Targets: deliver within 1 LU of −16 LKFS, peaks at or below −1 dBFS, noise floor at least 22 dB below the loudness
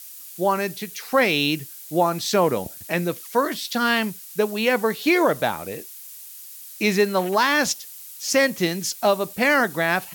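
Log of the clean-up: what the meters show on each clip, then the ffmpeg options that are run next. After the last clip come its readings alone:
background noise floor −41 dBFS; target noise floor −44 dBFS; integrated loudness −22.0 LKFS; sample peak −7.5 dBFS; target loudness −16.0 LKFS
→ -af "afftdn=noise_reduction=6:noise_floor=-41"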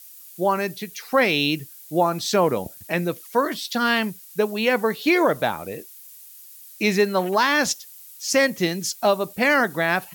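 background noise floor −45 dBFS; integrated loudness −22.0 LKFS; sample peak −8.0 dBFS; target loudness −16.0 LKFS
→ -af "volume=6dB"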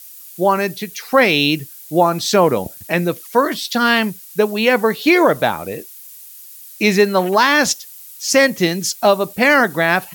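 integrated loudness −16.0 LKFS; sample peak −2.0 dBFS; background noise floor −39 dBFS

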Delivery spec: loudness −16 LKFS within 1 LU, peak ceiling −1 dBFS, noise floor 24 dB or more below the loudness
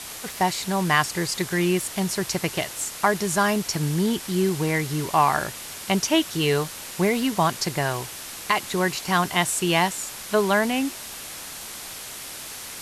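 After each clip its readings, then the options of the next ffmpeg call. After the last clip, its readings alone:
background noise floor −37 dBFS; target noise floor −48 dBFS; integrated loudness −24.0 LKFS; sample peak −5.5 dBFS; target loudness −16.0 LKFS
→ -af "afftdn=noise_reduction=11:noise_floor=-37"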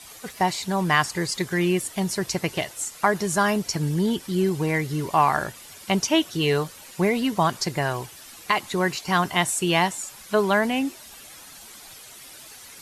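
background noise floor −45 dBFS; target noise floor −48 dBFS
→ -af "afftdn=noise_reduction=6:noise_floor=-45"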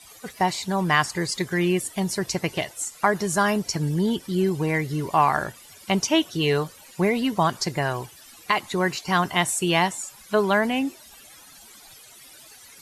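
background noise floor −48 dBFS; integrated loudness −24.0 LKFS; sample peak −5.5 dBFS; target loudness −16.0 LKFS
→ -af "volume=8dB,alimiter=limit=-1dB:level=0:latency=1"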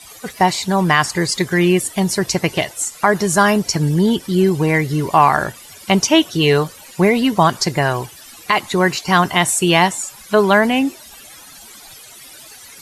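integrated loudness −16.0 LKFS; sample peak −1.0 dBFS; background noise floor −40 dBFS

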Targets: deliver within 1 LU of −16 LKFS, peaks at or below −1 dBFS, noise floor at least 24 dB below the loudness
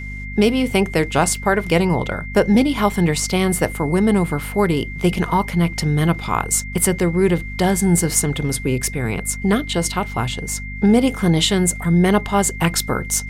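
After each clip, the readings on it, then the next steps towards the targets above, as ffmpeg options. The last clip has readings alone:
mains hum 50 Hz; hum harmonics up to 250 Hz; level of the hum −28 dBFS; interfering tone 2,100 Hz; level of the tone −32 dBFS; integrated loudness −18.5 LKFS; sample peak −3.0 dBFS; target loudness −16.0 LKFS
→ -af "bandreject=frequency=50:width_type=h:width=6,bandreject=frequency=100:width_type=h:width=6,bandreject=frequency=150:width_type=h:width=6,bandreject=frequency=200:width_type=h:width=6,bandreject=frequency=250:width_type=h:width=6"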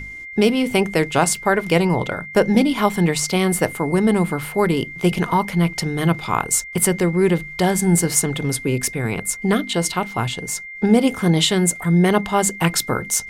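mains hum none found; interfering tone 2,100 Hz; level of the tone −32 dBFS
→ -af "bandreject=frequency=2100:width=30"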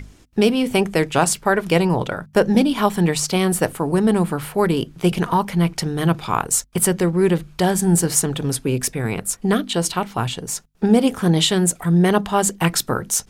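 interfering tone none found; integrated loudness −19.5 LKFS; sample peak −3.0 dBFS; target loudness −16.0 LKFS
→ -af "volume=3.5dB,alimiter=limit=-1dB:level=0:latency=1"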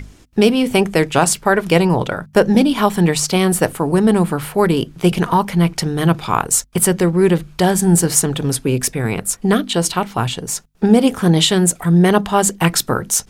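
integrated loudness −16.0 LKFS; sample peak −1.0 dBFS; background noise floor −46 dBFS

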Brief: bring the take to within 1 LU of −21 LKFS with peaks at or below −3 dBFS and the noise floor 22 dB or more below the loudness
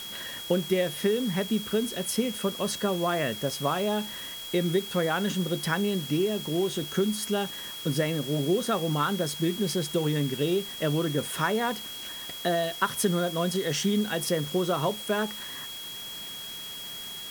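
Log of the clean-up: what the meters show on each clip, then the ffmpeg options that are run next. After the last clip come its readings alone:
interfering tone 3,300 Hz; level of the tone −38 dBFS; background noise floor −39 dBFS; target noise floor −51 dBFS; integrated loudness −28.5 LKFS; sample peak −11.5 dBFS; target loudness −21.0 LKFS
→ -af "bandreject=frequency=3300:width=30"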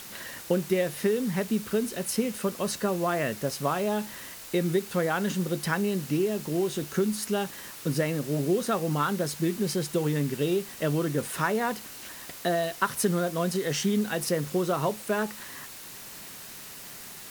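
interfering tone none found; background noise floor −43 dBFS; target noise floor −51 dBFS
→ -af "afftdn=noise_reduction=8:noise_floor=-43"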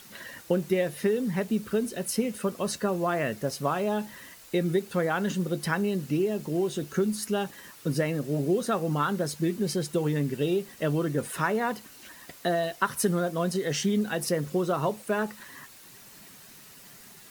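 background noise floor −50 dBFS; target noise floor −51 dBFS
→ -af "afftdn=noise_reduction=6:noise_floor=-50"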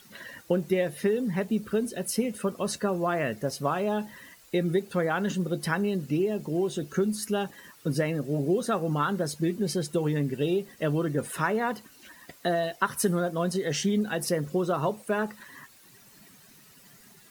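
background noise floor −55 dBFS; integrated loudness −28.5 LKFS; sample peak −12.0 dBFS; target loudness −21.0 LKFS
→ -af "volume=7.5dB"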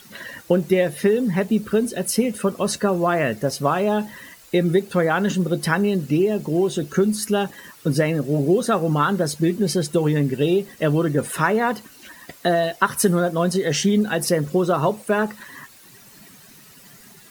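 integrated loudness −21.0 LKFS; sample peak −4.5 dBFS; background noise floor −48 dBFS

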